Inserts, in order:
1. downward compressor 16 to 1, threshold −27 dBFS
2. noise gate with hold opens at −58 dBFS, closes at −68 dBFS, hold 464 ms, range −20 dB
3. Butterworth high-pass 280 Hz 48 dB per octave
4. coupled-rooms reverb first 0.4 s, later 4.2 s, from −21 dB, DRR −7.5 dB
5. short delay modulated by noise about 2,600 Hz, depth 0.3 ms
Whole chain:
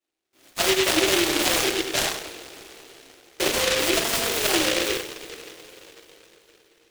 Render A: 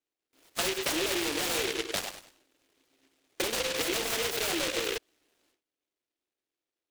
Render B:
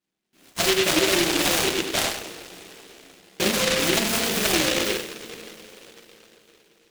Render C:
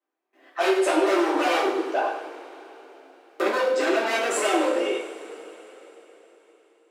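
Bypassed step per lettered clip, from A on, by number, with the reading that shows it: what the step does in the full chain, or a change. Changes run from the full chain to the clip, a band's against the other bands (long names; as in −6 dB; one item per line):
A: 4, change in momentary loudness spread −12 LU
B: 3, 125 Hz band +4.5 dB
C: 5, 8 kHz band −12.5 dB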